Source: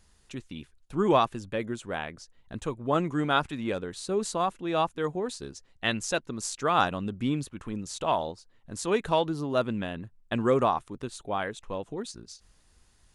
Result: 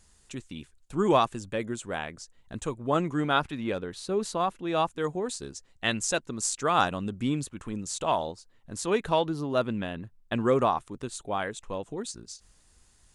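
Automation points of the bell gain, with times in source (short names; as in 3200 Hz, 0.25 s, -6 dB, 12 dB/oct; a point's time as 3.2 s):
bell 7800 Hz 0.7 oct
2.7 s +8 dB
3.49 s -4 dB
4.41 s -4 dB
5 s +7 dB
8.2 s +7 dB
9.07 s -1 dB
10.42 s -1 dB
11.17 s +7 dB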